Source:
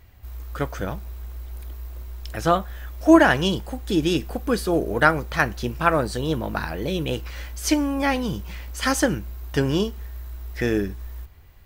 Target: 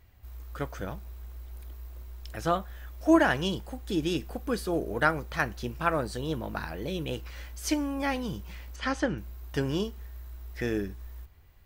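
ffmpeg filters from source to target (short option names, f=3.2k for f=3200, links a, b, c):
-filter_complex "[0:a]asettb=1/sr,asplit=3[a][b][c];[a]atrim=end=8.764[d];[b]atrim=start=8.76:end=9.18,asetpts=PTS-STARTPTS,afade=t=in:d=0.004:c=qsin,afade=t=out:st=0.416:d=0.004:c=qsin,lowpass=3.8k[e];[c]atrim=start=9.176[f];[d][e]acrossfade=d=0.004:c1=hsin:c2=qsin[g];[g][f]acrossfade=d=0.004:c1=qsin:c2=hsin,volume=-7.5dB"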